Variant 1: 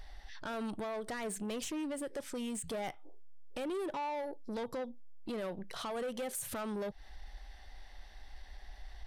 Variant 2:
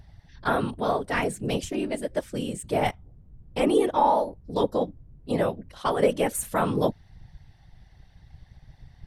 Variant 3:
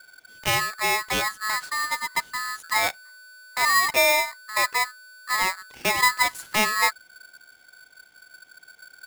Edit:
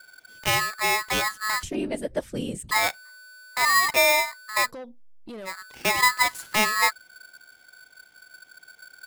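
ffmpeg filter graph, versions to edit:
-filter_complex "[2:a]asplit=3[a][b][c];[a]atrim=end=1.632[d];[1:a]atrim=start=1.628:end=2.712[e];[b]atrim=start=2.708:end=4.72[f];[0:a]atrim=start=4.62:end=5.55[g];[c]atrim=start=5.45[h];[d][e]acrossfade=d=0.004:c1=hsin:c2=hsin[i];[i][f]acrossfade=d=0.004:c1=hsin:c2=hsin[j];[j][g]acrossfade=d=0.1:c1=tri:c2=tri[k];[k][h]acrossfade=d=0.1:c1=tri:c2=tri"

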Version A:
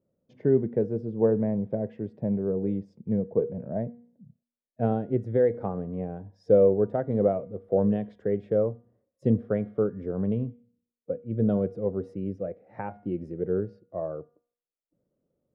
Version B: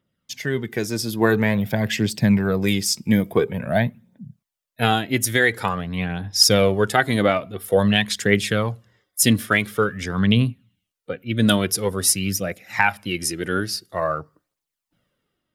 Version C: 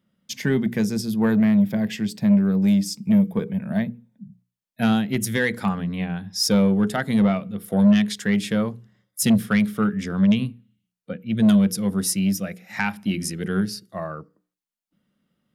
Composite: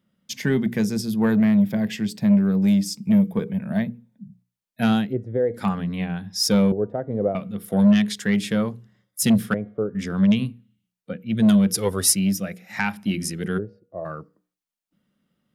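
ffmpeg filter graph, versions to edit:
-filter_complex "[0:a]asplit=4[a][b][c][d];[2:a]asplit=6[e][f][g][h][i][j];[e]atrim=end=5.14[k];[a]atrim=start=5.04:end=5.63[l];[f]atrim=start=5.53:end=6.722[m];[b]atrim=start=6.718:end=7.352[n];[g]atrim=start=7.348:end=9.542[o];[c]atrim=start=9.538:end=9.952[p];[h]atrim=start=9.948:end=11.742[q];[1:a]atrim=start=11.738:end=12.152[r];[i]atrim=start=12.148:end=13.59[s];[d]atrim=start=13.57:end=14.06[t];[j]atrim=start=14.04[u];[k][l]acrossfade=d=0.1:c1=tri:c2=tri[v];[v][m]acrossfade=d=0.1:c1=tri:c2=tri[w];[w][n]acrossfade=d=0.004:c1=hsin:c2=hsin[x];[x][o]acrossfade=d=0.004:c1=hsin:c2=hsin[y];[y][p]acrossfade=d=0.004:c1=hsin:c2=hsin[z];[z][q]acrossfade=d=0.004:c1=hsin:c2=hsin[aa];[aa][r]acrossfade=d=0.004:c1=hsin:c2=hsin[ab];[ab][s]acrossfade=d=0.004:c1=hsin:c2=hsin[ac];[ac][t]acrossfade=d=0.02:c1=tri:c2=tri[ad];[ad][u]acrossfade=d=0.02:c1=tri:c2=tri"

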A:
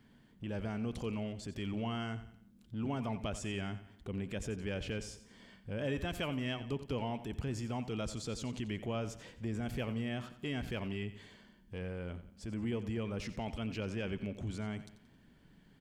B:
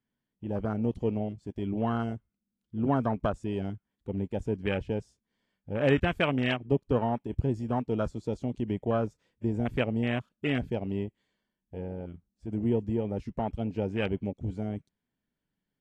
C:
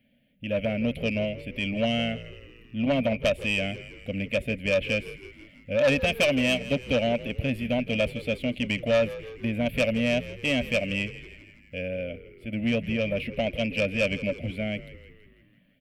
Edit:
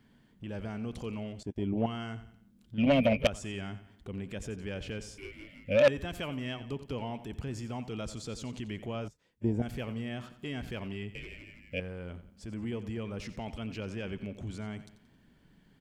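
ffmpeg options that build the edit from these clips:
-filter_complex "[1:a]asplit=2[a][b];[2:a]asplit=3[c][d][e];[0:a]asplit=6[f][g][h][i][j][k];[f]atrim=end=1.432[l];[a]atrim=start=1.428:end=1.862[m];[g]atrim=start=1.858:end=2.782[n];[c]atrim=start=2.778:end=3.272[o];[h]atrim=start=3.268:end=5.182[p];[d]atrim=start=5.178:end=5.882[q];[i]atrim=start=5.878:end=9.082[r];[b]atrim=start=9.078:end=9.622[s];[j]atrim=start=9.618:end=11.152[t];[e]atrim=start=11.148:end=11.802[u];[k]atrim=start=11.798[v];[l][m]acrossfade=d=0.004:c1=hsin:c2=hsin[w];[w][n]acrossfade=d=0.004:c1=hsin:c2=hsin[x];[x][o]acrossfade=d=0.004:c1=hsin:c2=hsin[y];[y][p]acrossfade=d=0.004:c1=hsin:c2=hsin[z];[z][q]acrossfade=d=0.004:c1=hsin:c2=hsin[aa];[aa][r]acrossfade=d=0.004:c1=hsin:c2=hsin[ab];[ab][s]acrossfade=d=0.004:c1=hsin:c2=hsin[ac];[ac][t]acrossfade=d=0.004:c1=hsin:c2=hsin[ad];[ad][u]acrossfade=d=0.004:c1=hsin:c2=hsin[ae];[ae][v]acrossfade=d=0.004:c1=hsin:c2=hsin"

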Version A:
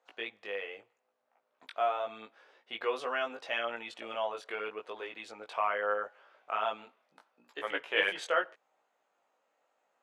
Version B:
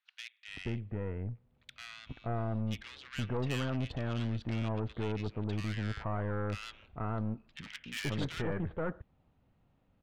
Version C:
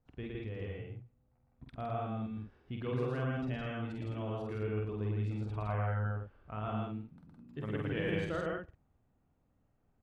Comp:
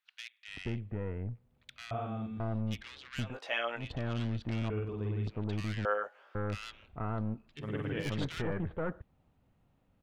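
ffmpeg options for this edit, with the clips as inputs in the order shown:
-filter_complex "[2:a]asplit=3[a][b][c];[0:a]asplit=2[d][e];[1:a]asplit=6[f][g][h][i][j][k];[f]atrim=end=1.912[l];[a]atrim=start=1.908:end=2.402[m];[g]atrim=start=2.398:end=3.38[n];[d]atrim=start=3.22:end=3.91[o];[h]atrim=start=3.75:end=4.702[p];[b]atrim=start=4.698:end=5.272[q];[i]atrim=start=5.268:end=5.852[r];[e]atrim=start=5.848:end=6.352[s];[j]atrim=start=6.348:end=7.65[t];[c]atrim=start=7.55:end=8.09[u];[k]atrim=start=7.99[v];[l][m]acrossfade=d=0.004:c1=hsin:c2=hsin[w];[w][n]acrossfade=d=0.004:c1=hsin:c2=hsin[x];[x][o]acrossfade=d=0.16:c1=tri:c2=tri[y];[y][p]acrossfade=d=0.16:c1=tri:c2=tri[z];[z][q]acrossfade=d=0.004:c1=hsin:c2=hsin[aa];[aa][r]acrossfade=d=0.004:c1=hsin:c2=hsin[ab];[ab][s]acrossfade=d=0.004:c1=hsin:c2=hsin[ac];[ac][t]acrossfade=d=0.004:c1=hsin:c2=hsin[ad];[ad][u]acrossfade=d=0.1:c1=tri:c2=tri[ae];[ae][v]acrossfade=d=0.1:c1=tri:c2=tri"

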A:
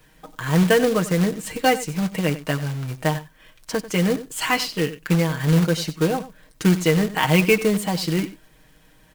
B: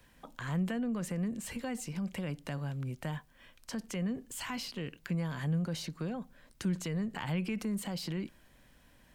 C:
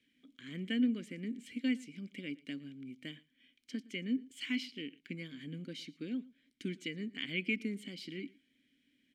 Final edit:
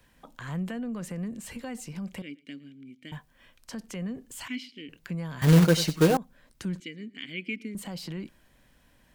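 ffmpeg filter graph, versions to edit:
-filter_complex "[2:a]asplit=3[a][b][c];[1:a]asplit=5[d][e][f][g][h];[d]atrim=end=2.222[i];[a]atrim=start=2.218:end=3.122[j];[e]atrim=start=3.118:end=4.482[k];[b]atrim=start=4.478:end=4.892[l];[f]atrim=start=4.888:end=5.422[m];[0:a]atrim=start=5.418:end=6.172[n];[g]atrim=start=6.168:end=6.802[o];[c]atrim=start=6.798:end=7.752[p];[h]atrim=start=7.748[q];[i][j]acrossfade=d=0.004:c1=hsin:c2=hsin[r];[r][k]acrossfade=d=0.004:c1=hsin:c2=hsin[s];[s][l]acrossfade=d=0.004:c1=hsin:c2=hsin[t];[t][m]acrossfade=d=0.004:c1=hsin:c2=hsin[u];[u][n]acrossfade=d=0.004:c1=hsin:c2=hsin[v];[v][o]acrossfade=d=0.004:c1=hsin:c2=hsin[w];[w][p]acrossfade=d=0.004:c1=hsin:c2=hsin[x];[x][q]acrossfade=d=0.004:c1=hsin:c2=hsin"

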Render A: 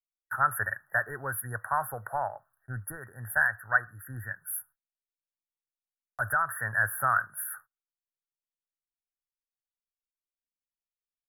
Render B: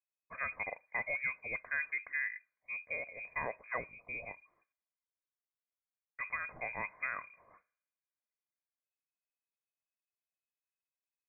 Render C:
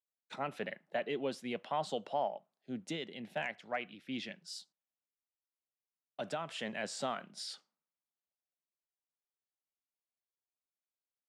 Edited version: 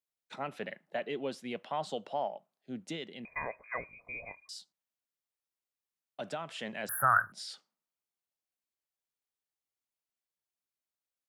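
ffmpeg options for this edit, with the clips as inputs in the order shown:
-filter_complex "[2:a]asplit=3[a][b][c];[a]atrim=end=3.252[d];[1:a]atrim=start=3.248:end=4.492[e];[b]atrim=start=4.488:end=6.892[f];[0:a]atrim=start=6.888:end=7.322[g];[c]atrim=start=7.318[h];[d][e]acrossfade=d=0.004:c1=hsin:c2=hsin[i];[i][f]acrossfade=d=0.004:c1=hsin:c2=hsin[j];[j][g]acrossfade=d=0.004:c1=hsin:c2=hsin[k];[k][h]acrossfade=d=0.004:c1=hsin:c2=hsin"

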